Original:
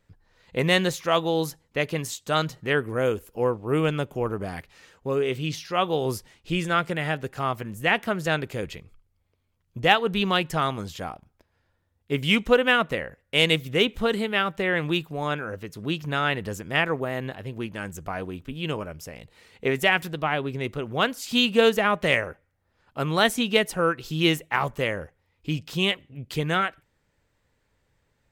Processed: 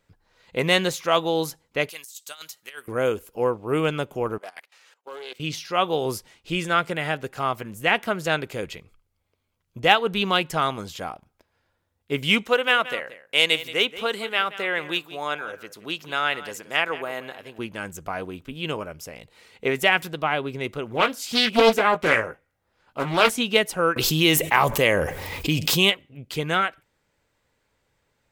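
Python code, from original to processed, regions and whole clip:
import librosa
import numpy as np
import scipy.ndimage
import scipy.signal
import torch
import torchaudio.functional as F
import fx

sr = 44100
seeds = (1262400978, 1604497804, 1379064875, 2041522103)

y = fx.chain(x, sr, fx.differentiator(),
    fx.over_compress(threshold_db=-40.0, ratio=-0.5), at=(1.89, 2.88))
y = fx.chain(y, sr, fx.highpass(hz=670.0, slope=12),
    fx.level_steps(step_db=19),
    fx.doppler_dist(depth_ms=0.15), at=(4.38, 5.4))
y = fx.chain(y, sr, fx.highpass(hz=590.0, slope=6),
    fx.echo_single(ms=176, db=-15.5), at=(12.46, 17.59))
y = fx.chain(y, sr, fx.doubler(ms=18.0, db=-8.5),
    fx.doppler_dist(depth_ms=0.57), at=(20.91, 23.37))
y = fx.chain(y, sr, fx.high_shelf(hz=11000.0, db=10.0),
    fx.notch(hz=1400.0, q=9.1),
    fx.env_flatten(amount_pct=70), at=(23.96, 25.9))
y = fx.low_shelf(y, sr, hz=220.0, db=-8.0)
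y = fx.notch(y, sr, hz=1800.0, q=17.0)
y = y * librosa.db_to_amplitude(2.5)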